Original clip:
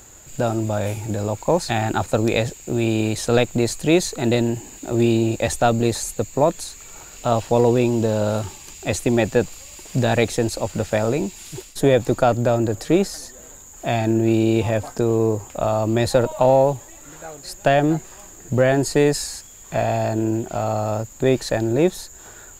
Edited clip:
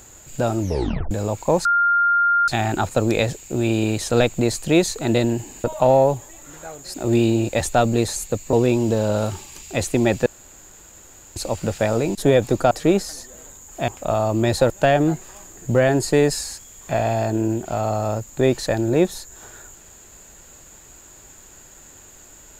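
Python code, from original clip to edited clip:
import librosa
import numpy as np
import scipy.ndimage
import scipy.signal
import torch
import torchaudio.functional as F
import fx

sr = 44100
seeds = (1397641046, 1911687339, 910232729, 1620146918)

y = fx.edit(x, sr, fx.tape_stop(start_s=0.6, length_s=0.51),
    fx.insert_tone(at_s=1.65, length_s=0.83, hz=1400.0, db=-14.0),
    fx.cut(start_s=6.4, length_s=1.25),
    fx.room_tone_fill(start_s=9.38, length_s=1.1),
    fx.cut(start_s=11.27, length_s=0.46),
    fx.cut(start_s=12.29, length_s=0.47),
    fx.cut(start_s=13.93, length_s=1.48),
    fx.move(start_s=16.23, length_s=1.3, to_s=4.81), tone=tone)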